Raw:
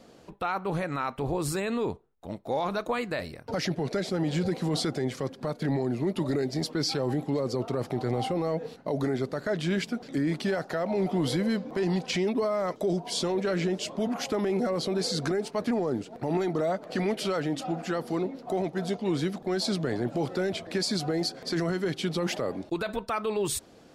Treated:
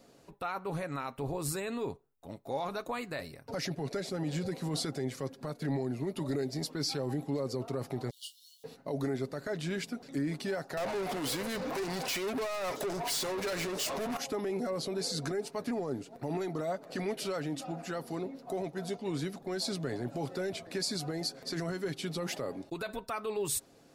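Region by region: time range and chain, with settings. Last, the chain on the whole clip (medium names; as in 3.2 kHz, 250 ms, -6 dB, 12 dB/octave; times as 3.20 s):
8.10–8.64 s: jump at every zero crossing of -47 dBFS + brick-wall FIR high-pass 2.8 kHz + doubling 26 ms -8 dB
10.77–14.17 s: treble shelf 9.8 kHz +10 dB + compression 10:1, threshold -30 dBFS + overdrive pedal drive 29 dB, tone 5.9 kHz, clips at -21.5 dBFS
whole clip: treble shelf 8.5 kHz +11 dB; band-stop 3.2 kHz, Q 18; comb 7.3 ms, depth 31%; trim -7 dB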